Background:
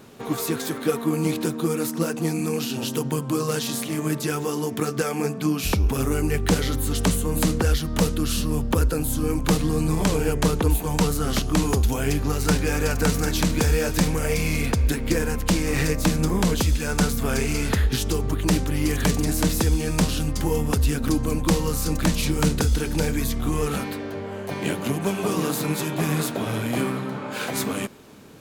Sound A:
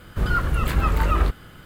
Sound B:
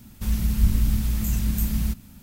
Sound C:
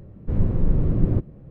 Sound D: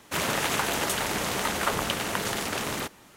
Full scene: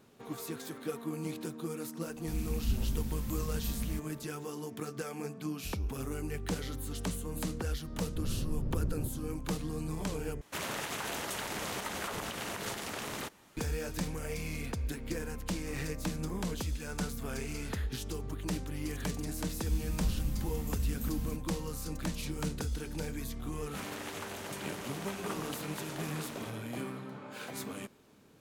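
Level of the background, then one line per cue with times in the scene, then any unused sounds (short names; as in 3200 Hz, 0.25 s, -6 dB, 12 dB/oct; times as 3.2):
background -14.5 dB
2.06 add B -12 dB
7.88 add C -5 dB + compressor 3:1, threshold -29 dBFS
10.41 replace with D -7.5 dB + limiter -19 dBFS
19.43 add B -13.5 dB
23.63 add D -16 dB
not used: A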